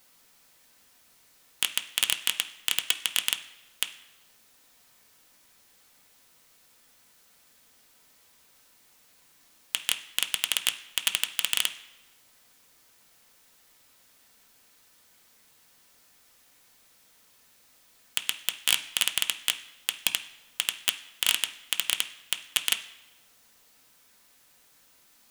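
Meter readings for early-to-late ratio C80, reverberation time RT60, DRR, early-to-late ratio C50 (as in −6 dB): 15.5 dB, 1.0 s, 5.5 dB, 12.5 dB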